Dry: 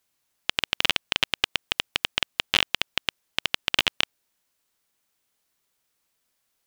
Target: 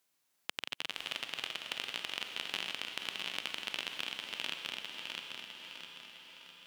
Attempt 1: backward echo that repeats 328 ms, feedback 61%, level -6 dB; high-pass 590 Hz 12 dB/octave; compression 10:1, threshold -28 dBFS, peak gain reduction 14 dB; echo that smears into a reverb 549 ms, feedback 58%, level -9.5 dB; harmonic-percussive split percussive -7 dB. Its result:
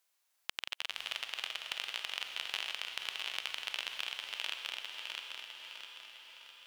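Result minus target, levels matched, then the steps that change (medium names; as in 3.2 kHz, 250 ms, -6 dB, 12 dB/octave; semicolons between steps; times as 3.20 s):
125 Hz band -11.5 dB
change: high-pass 150 Hz 12 dB/octave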